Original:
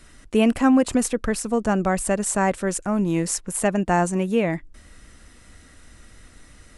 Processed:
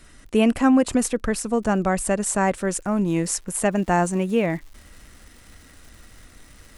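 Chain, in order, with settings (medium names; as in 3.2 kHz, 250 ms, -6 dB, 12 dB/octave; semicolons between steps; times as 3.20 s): crackle 22 per s -41 dBFS, from 2.45 s 130 per s, from 3.72 s 460 per s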